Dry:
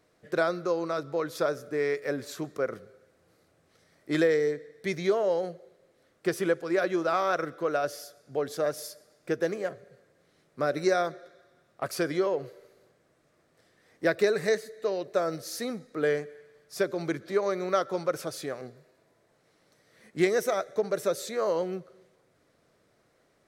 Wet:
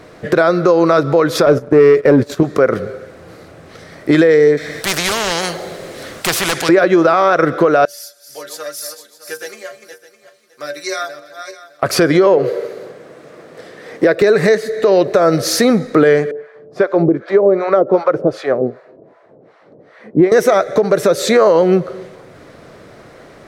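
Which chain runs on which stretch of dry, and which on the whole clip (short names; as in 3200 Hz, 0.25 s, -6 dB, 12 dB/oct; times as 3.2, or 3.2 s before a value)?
1.46–2.43 gate -41 dBFS, range -13 dB + tilt shelf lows +5.5 dB, about 680 Hz + sample leveller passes 1
4.57–6.69 high shelf 3000 Hz +12 dB + hard clip -19.5 dBFS + spectral compressor 4:1
7.85–11.83 regenerating reverse delay 0.305 s, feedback 41%, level -8.5 dB + differentiator + metallic resonator 70 Hz, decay 0.25 s, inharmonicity 0.008
12.37–14.22 HPF 160 Hz + bell 470 Hz +6.5 dB 0.44 oct
16.31–20.32 harmonic tremolo 2.6 Hz, depth 100%, crossover 670 Hz + band-pass 450 Hz, Q 0.6
whole clip: compressor 6:1, threshold -34 dBFS; high shelf 5000 Hz -11 dB; maximiser +29 dB; gain -1 dB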